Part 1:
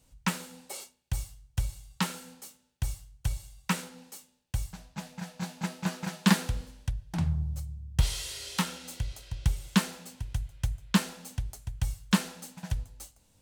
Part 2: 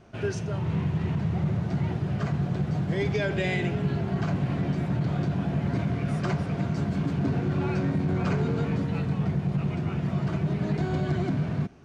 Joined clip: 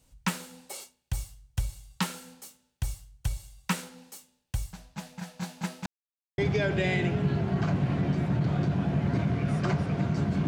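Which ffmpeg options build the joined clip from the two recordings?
-filter_complex "[0:a]apad=whole_dur=10.47,atrim=end=10.47,asplit=2[a][b];[a]atrim=end=5.86,asetpts=PTS-STARTPTS,afade=t=out:st=5.856:d=0.004:c=hsin[c];[b]atrim=start=5.86:end=6.38,asetpts=PTS-STARTPTS,volume=0[d];[1:a]atrim=start=2.98:end=7.07,asetpts=PTS-STARTPTS,afade=t=in:d=0.004:c=hsin[e];[c][d][e]concat=n=3:v=0:a=1"

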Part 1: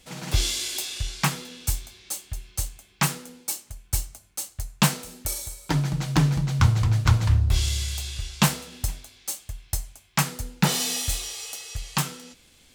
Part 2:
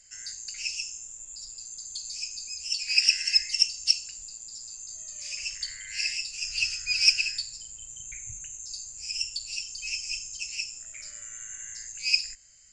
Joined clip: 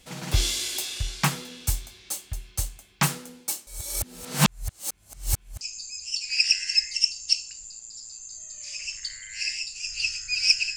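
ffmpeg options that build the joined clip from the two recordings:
-filter_complex "[0:a]apad=whole_dur=10.76,atrim=end=10.76,asplit=2[a][b];[a]atrim=end=3.672[c];[b]atrim=start=3.668:end=5.612,asetpts=PTS-STARTPTS,areverse[d];[1:a]atrim=start=2.188:end=7.34[e];[c][d]acrossfade=d=0.004:c1=hsin:c2=hsin[f];[f][e]acrossfade=d=0.004:c1=hsin:c2=hsin"

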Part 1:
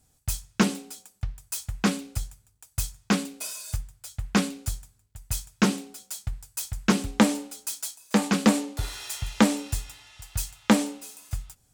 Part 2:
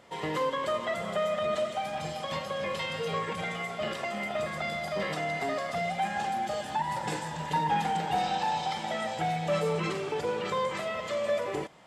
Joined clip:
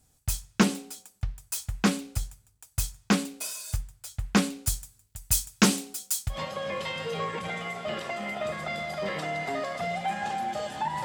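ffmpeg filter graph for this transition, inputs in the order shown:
-filter_complex "[0:a]asettb=1/sr,asplit=3[a][b][c];[a]atrim=end=4.674[d];[b]atrim=start=4.67:end=6.4,asetpts=PTS-STARTPTS,afade=t=in:d=0.004:c=qsin,afade=t=out:st=1.726:d=0.004:c=qsin,highshelf=f=3.3k:g=9[e];[c]atrim=start=6.396[f];[d][e]acrossfade=d=0.004:c1=hsin:c2=qsin[g];[g][f]acrossfade=d=0.004:c1=qsin:c2=hsin,apad=whole_dur=11.04,atrim=end=11.04,atrim=end=6.4,asetpts=PTS-STARTPTS[h];[1:a]atrim=start=2.22:end=6.98,asetpts=PTS-STARTPTS[i];[h][i]acrossfade=d=0.12:c1=tri:c2=tri"

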